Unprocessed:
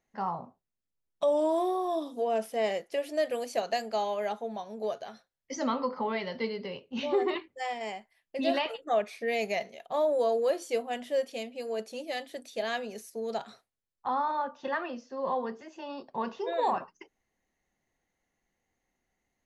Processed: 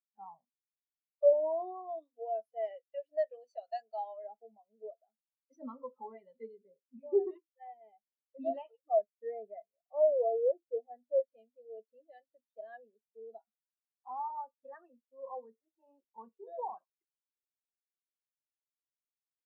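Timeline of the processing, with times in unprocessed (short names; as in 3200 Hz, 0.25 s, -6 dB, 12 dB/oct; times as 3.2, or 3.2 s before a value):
1.33–4.24 tilt shelf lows -6.5 dB, about 700 Hz
6.57–7.31 steep low-pass 2500 Hz 96 dB/oct
9.07–11.2 steep low-pass 2000 Hz
whole clip: HPF 160 Hz 6 dB/oct; notch 2200 Hz, Q 28; spectral expander 2.5:1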